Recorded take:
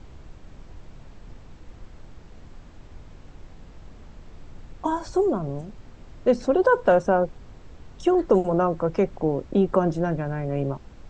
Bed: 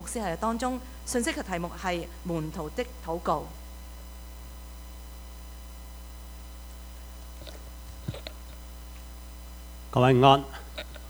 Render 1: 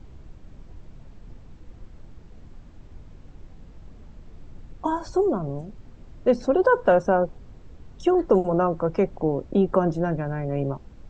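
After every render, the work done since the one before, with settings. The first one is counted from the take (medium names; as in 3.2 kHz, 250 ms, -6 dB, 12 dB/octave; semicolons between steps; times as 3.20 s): noise reduction 6 dB, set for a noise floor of -47 dBFS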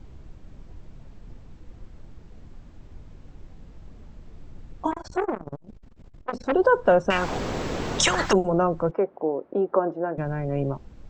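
4.91–6.52 s: transformer saturation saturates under 1.3 kHz; 7.10–8.33 s: spectrum-flattening compressor 10:1; 8.91–10.18 s: Butterworth band-pass 720 Hz, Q 0.58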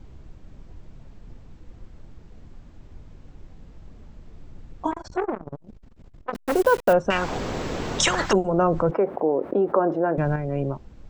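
5.09–5.59 s: distance through air 67 m; 6.34–6.93 s: send-on-delta sampling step -28.5 dBFS; 8.58–10.36 s: level flattener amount 50%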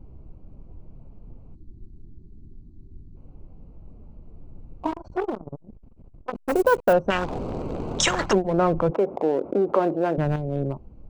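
local Wiener filter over 25 samples; 1.55–3.16 s: time-frequency box 430–3400 Hz -20 dB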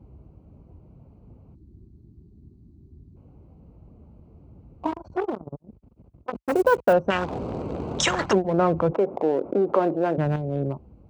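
high-pass 54 Hz 24 dB/octave; treble shelf 6.5 kHz -5.5 dB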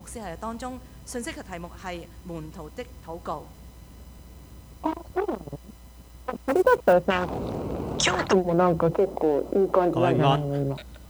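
add bed -5 dB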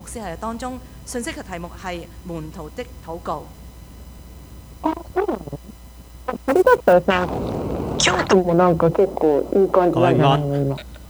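trim +6 dB; peak limiter -3 dBFS, peak gain reduction 2.5 dB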